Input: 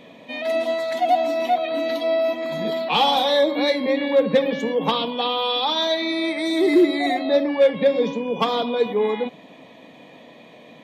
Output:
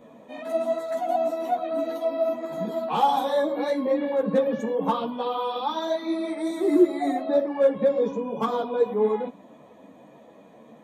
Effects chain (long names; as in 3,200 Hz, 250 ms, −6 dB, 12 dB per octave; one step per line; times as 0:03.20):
flat-topped bell 3,200 Hz −13 dB
string-ensemble chorus